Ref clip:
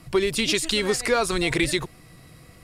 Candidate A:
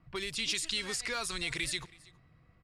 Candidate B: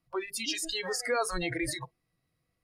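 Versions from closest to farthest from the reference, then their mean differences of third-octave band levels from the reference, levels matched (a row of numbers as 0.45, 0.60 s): A, B; 5.0, 11.5 dB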